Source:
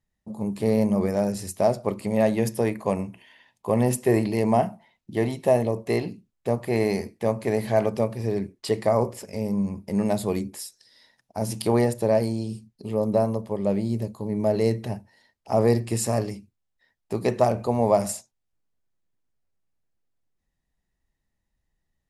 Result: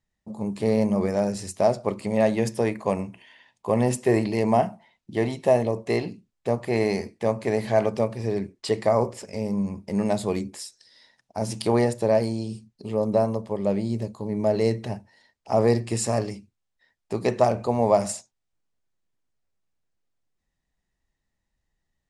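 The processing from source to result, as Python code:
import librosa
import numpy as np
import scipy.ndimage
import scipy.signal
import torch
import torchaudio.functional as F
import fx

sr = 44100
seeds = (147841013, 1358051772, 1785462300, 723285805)

y = scipy.signal.sosfilt(scipy.signal.butter(4, 9000.0, 'lowpass', fs=sr, output='sos'), x)
y = fx.low_shelf(y, sr, hz=390.0, db=-3.0)
y = y * 10.0 ** (1.5 / 20.0)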